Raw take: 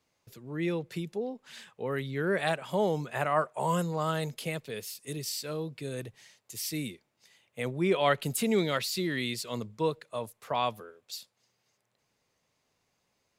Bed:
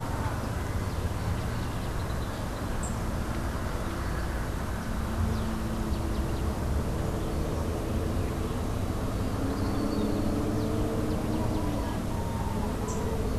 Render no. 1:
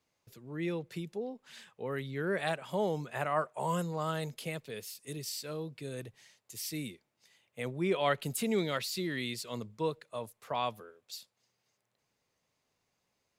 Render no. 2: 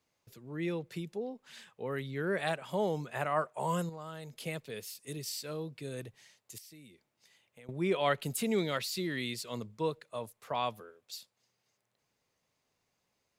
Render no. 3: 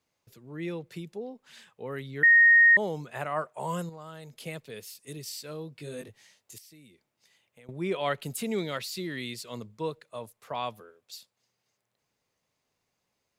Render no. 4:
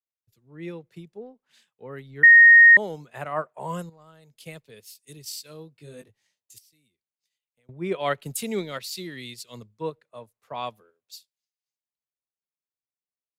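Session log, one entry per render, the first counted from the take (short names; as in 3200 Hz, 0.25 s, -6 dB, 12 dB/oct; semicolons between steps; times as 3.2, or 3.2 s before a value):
gain -4 dB
3.89–4.4 compressor 2:1, threshold -48 dBFS; 6.58–7.69 compressor 4:1, threshold -54 dBFS
2.23–2.77 bleep 1860 Hz -14 dBFS; 5.76–6.56 doubler 20 ms -3 dB
transient shaper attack +1 dB, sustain -6 dB; three-band expander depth 70%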